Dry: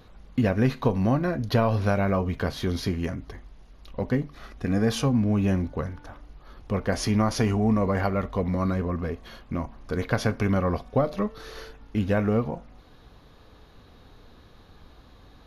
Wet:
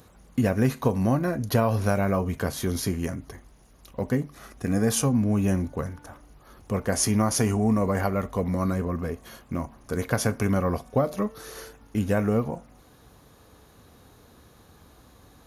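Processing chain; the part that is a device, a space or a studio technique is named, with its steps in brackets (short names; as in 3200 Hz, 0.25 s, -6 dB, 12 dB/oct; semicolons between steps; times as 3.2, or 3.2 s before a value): budget condenser microphone (HPF 63 Hz; resonant high shelf 5800 Hz +12 dB, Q 1.5)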